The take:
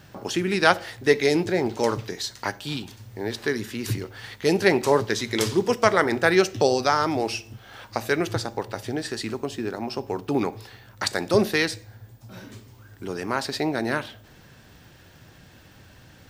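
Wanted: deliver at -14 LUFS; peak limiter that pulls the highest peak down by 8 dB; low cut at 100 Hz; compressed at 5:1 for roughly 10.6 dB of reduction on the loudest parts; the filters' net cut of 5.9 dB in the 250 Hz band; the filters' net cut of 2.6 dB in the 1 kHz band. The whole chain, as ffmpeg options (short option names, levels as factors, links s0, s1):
-af "highpass=100,equalizer=f=250:t=o:g=-8.5,equalizer=f=1000:t=o:g=-3,acompressor=threshold=0.0447:ratio=5,volume=10.6,alimiter=limit=1:level=0:latency=1"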